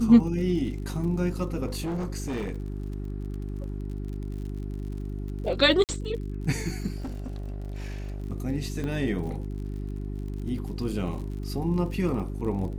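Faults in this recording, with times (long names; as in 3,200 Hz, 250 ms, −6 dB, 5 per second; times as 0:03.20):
surface crackle 53 per second −37 dBFS
mains hum 50 Hz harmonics 8 −33 dBFS
0:01.66–0:03.78: clipping −27 dBFS
0:05.84–0:05.89: drop-out 48 ms
0:06.96–0:08.22: clipping −30.5 dBFS
0:08.84: click −22 dBFS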